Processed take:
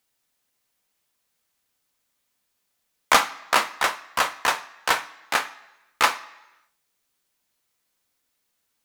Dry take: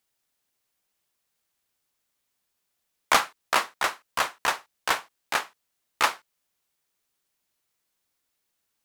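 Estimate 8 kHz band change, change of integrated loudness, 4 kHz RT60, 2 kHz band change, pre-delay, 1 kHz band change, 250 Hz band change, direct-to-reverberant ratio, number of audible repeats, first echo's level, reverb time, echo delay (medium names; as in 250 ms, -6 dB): +3.5 dB, +3.5 dB, 0.90 s, +3.5 dB, 3 ms, +3.5 dB, +3.5 dB, 9.0 dB, no echo, no echo, 1.0 s, no echo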